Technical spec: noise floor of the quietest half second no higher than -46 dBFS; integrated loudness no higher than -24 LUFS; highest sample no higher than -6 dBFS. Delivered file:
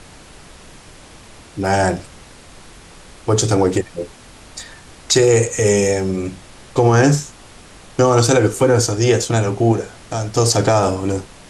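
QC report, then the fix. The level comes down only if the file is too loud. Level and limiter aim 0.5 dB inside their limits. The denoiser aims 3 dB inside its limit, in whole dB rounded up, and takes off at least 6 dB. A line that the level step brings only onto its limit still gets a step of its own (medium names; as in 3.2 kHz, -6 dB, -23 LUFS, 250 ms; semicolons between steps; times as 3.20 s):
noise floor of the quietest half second -41 dBFS: fail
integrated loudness -16.5 LUFS: fail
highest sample -3.5 dBFS: fail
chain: trim -8 dB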